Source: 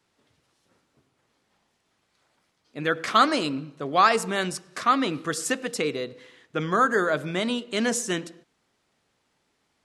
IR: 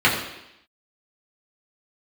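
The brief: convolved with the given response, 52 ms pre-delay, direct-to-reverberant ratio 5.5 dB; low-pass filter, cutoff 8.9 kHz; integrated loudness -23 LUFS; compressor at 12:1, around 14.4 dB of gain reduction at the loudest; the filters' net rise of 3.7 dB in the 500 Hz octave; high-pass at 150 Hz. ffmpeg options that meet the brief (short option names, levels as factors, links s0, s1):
-filter_complex "[0:a]highpass=150,lowpass=8900,equalizer=f=500:t=o:g=4.5,acompressor=threshold=0.0447:ratio=12,asplit=2[s0][s1];[1:a]atrim=start_sample=2205,adelay=52[s2];[s1][s2]afir=irnorm=-1:irlink=0,volume=0.0447[s3];[s0][s3]amix=inputs=2:normalize=0,volume=2.82"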